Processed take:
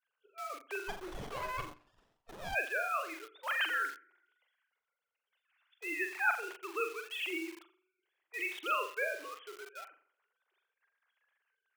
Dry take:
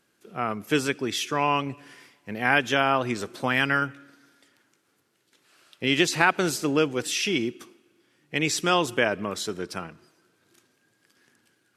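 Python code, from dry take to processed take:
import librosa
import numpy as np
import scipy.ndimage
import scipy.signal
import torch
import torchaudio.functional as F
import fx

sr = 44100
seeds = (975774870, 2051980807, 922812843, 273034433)

p1 = fx.sine_speech(x, sr)
p2 = p1 + fx.room_flutter(p1, sr, wall_m=7.4, rt60_s=0.44, dry=0)
p3 = fx.hpss(p2, sr, part='harmonic', gain_db=-7)
p4 = fx.quant_dither(p3, sr, seeds[0], bits=6, dither='none')
p5 = p3 + (p4 * librosa.db_to_amplitude(-6.5))
p6 = fx.highpass(p5, sr, hz=1400.0, slope=6)
p7 = fx.running_max(p6, sr, window=17, at=(0.87, 2.54), fade=0.02)
y = p7 * librosa.db_to_amplitude(-6.5)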